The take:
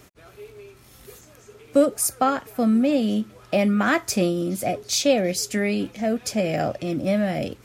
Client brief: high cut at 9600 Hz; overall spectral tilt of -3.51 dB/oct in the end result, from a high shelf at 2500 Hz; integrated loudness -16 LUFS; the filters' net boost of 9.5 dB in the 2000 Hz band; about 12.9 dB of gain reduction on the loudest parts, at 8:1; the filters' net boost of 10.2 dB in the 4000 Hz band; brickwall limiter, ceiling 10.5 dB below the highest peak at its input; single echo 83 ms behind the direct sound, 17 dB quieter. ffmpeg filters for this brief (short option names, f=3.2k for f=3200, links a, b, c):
-af "lowpass=9.6k,equalizer=f=2k:t=o:g=8,highshelf=f=2.5k:g=5,equalizer=f=4k:t=o:g=6.5,acompressor=threshold=-24dB:ratio=8,alimiter=limit=-19.5dB:level=0:latency=1,aecho=1:1:83:0.141,volume=13.5dB"